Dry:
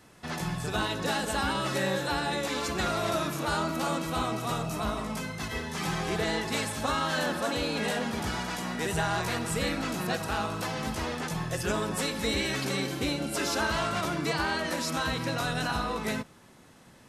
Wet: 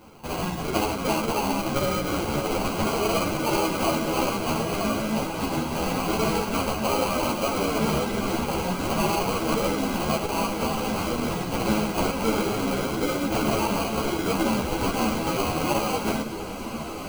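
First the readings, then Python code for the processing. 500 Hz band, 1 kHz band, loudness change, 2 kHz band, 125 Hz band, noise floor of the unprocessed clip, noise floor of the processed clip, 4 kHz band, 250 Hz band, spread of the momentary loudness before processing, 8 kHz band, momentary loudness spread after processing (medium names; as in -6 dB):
+6.5 dB, +5.0 dB, +4.5 dB, 0.0 dB, +3.5 dB, -55 dBFS, -33 dBFS, +1.5 dB, +7.0 dB, 4 LU, +3.5 dB, 3 LU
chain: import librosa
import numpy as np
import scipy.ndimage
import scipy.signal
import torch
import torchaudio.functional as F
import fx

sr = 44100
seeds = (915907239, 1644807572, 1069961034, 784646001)

p1 = scipy.signal.sosfilt(scipy.signal.butter(2, 170.0, 'highpass', fs=sr, output='sos'), x)
p2 = fx.high_shelf(p1, sr, hz=8300.0, db=10.5)
p3 = fx.rider(p2, sr, range_db=3, speed_s=0.5)
p4 = p2 + (p3 * 10.0 ** (-2.5 / 20.0))
p5 = fx.filter_lfo_notch(p4, sr, shape='saw_down', hz=0.33, low_hz=410.0, high_hz=5300.0, q=1.4)
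p6 = fx.sample_hold(p5, sr, seeds[0], rate_hz=1800.0, jitter_pct=0)
p7 = p6 + fx.echo_diffused(p6, sr, ms=1742, feedback_pct=44, wet_db=-8.5, dry=0)
p8 = fx.ensemble(p7, sr)
y = p8 * 10.0 ** (4.0 / 20.0)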